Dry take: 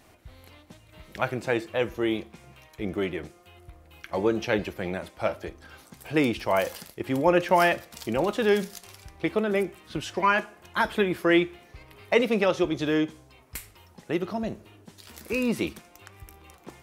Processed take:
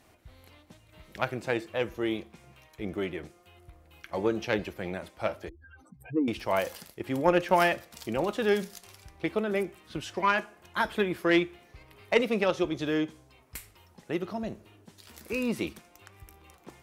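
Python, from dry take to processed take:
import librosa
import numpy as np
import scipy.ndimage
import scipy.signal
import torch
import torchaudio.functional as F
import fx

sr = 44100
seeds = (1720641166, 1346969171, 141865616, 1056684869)

y = fx.spec_expand(x, sr, power=3.0, at=(5.49, 6.28))
y = fx.cheby_harmonics(y, sr, harmonics=(3,), levels_db=(-18,), full_scale_db=-7.0)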